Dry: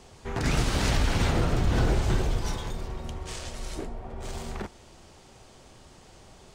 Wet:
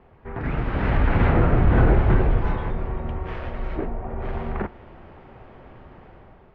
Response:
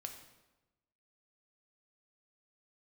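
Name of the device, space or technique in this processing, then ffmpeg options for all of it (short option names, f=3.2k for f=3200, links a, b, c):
action camera in a waterproof case: -af "lowpass=f=2.1k:w=0.5412,lowpass=f=2.1k:w=1.3066,dynaudnorm=f=600:g=3:m=9.5dB,volume=-1.5dB" -ar 24000 -c:a aac -b:a 48k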